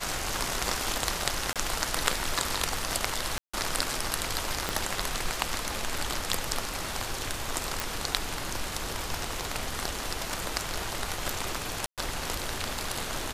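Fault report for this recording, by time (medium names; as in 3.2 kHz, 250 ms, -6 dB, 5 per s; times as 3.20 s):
1.53–1.56 s: dropout 27 ms
3.38–3.54 s: dropout 155 ms
4.69 s: pop -11 dBFS
7.80 s: pop
11.86–11.98 s: dropout 117 ms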